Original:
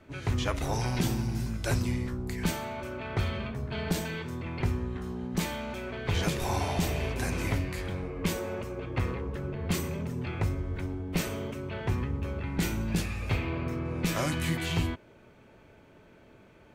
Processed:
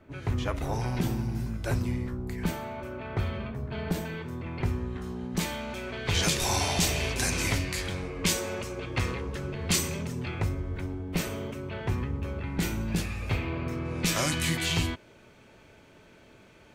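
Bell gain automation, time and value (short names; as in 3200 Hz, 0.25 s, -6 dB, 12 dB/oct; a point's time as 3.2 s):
bell 6300 Hz 2.7 oct
4.24 s -6.5 dB
5.08 s +3 dB
5.66 s +3 dB
6.31 s +12.5 dB
9.98 s +12.5 dB
10.51 s +0.5 dB
13.56 s +0.5 dB
14.02 s +9 dB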